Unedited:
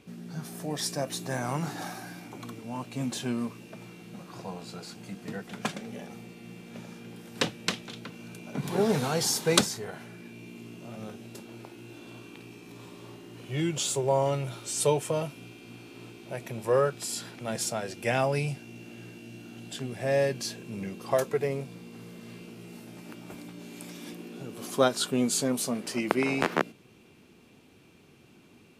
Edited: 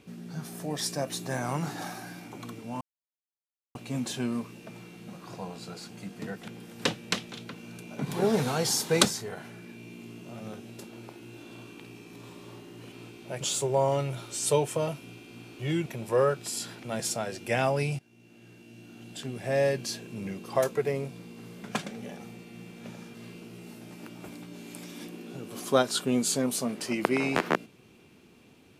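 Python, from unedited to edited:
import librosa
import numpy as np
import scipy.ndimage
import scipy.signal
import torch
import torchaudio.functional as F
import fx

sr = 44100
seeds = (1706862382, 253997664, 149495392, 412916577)

y = fx.edit(x, sr, fx.insert_silence(at_s=2.81, length_s=0.94),
    fx.move(start_s=5.54, length_s=1.5, to_s=22.2),
    fx.swap(start_s=13.48, length_s=0.27, other_s=15.93, other_length_s=0.49),
    fx.fade_in_from(start_s=18.55, length_s=1.48, floor_db=-18.5), tone=tone)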